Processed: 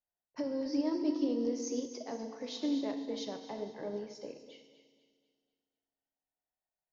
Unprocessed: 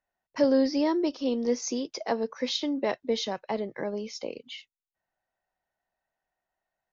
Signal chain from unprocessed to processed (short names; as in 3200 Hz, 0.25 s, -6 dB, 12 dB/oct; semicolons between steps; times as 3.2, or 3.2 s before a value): bell 2600 Hz -6.5 dB 2.8 oct; limiter -24.5 dBFS, peak gain reduction 10.5 dB; on a send: thinning echo 0.246 s, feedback 41%, high-pass 190 Hz, level -12 dB; on the sum: FDN reverb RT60 1.6 s, low-frequency decay 1.35×, high-frequency decay 1×, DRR 4.5 dB; upward expander 1.5:1, over -44 dBFS; gain -2.5 dB